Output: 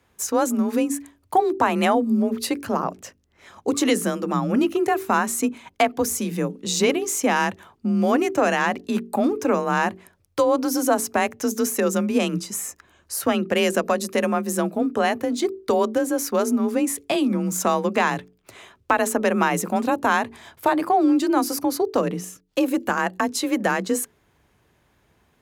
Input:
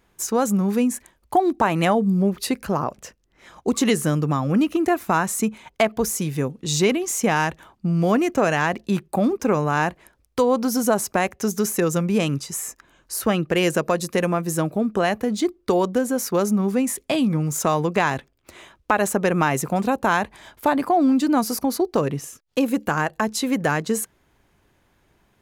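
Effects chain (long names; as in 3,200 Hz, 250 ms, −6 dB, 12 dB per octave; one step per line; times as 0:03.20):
mains-hum notches 50/100/150/200/250/300/350/400 Hz
frequency shifter +33 Hz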